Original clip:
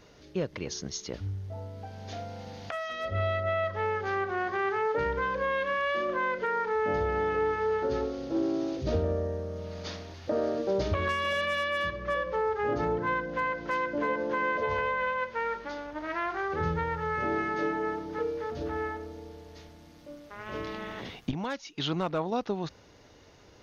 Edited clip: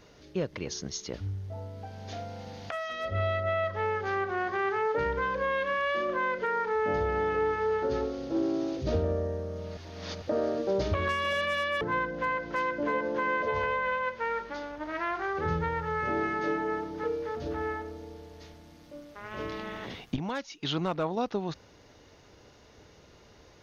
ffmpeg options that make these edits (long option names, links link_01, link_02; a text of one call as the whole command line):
ffmpeg -i in.wav -filter_complex "[0:a]asplit=4[link_01][link_02][link_03][link_04];[link_01]atrim=end=9.772[link_05];[link_02]atrim=start=9.768:end=10.222,asetpts=PTS-STARTPTS,areverse[link_06];[link_03]atrim=start=10.218:end=11.812[link_07];[link_04]atrim=start=12.958[link_08];[link_05][link_06]acrossfade=duration=0.004:curve1=hsin:curve2=hsin[link_09];[link_09][link_07]acrossfade=duration=0.004:curve1=hsin:curve2=hsin[link_10];[link_10][link_08]acrossfade=duration=0.004:curve1=hsin:curve2=hsin" out.wav